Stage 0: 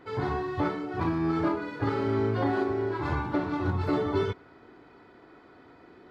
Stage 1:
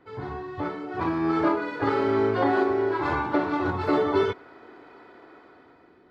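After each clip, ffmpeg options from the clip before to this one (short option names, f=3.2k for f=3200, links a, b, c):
-filter_complex "[0:a]highshelf=f=4.7k:g=-7,acrossover=split=290[a][b];[b]dynaudnorm=f=270:g=7:m=12dB[c];[a][c]amix=inputs=2:normalize=0,volume=-5dB"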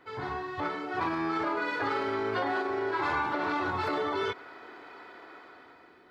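-af "alimiter=limit=-22dB:level=0:latency=1:release=79,tiltshelf=f=630:g=-6"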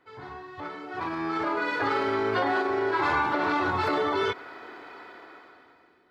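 -af "dynaudnorm=f=510:g=5:m=11dB,volume=-6.5dB"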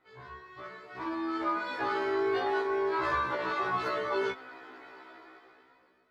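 -af "flanger=delay=1.5:depth=2.6:regen=66:speed=0.33:shape=triangular,afftfilt=real='re*1.73*eq(mod(b,3),0)':imag='im*1.73*eq(mod(b,3),0)':win_size=2048:overlap=0.75,volume=1.5dB"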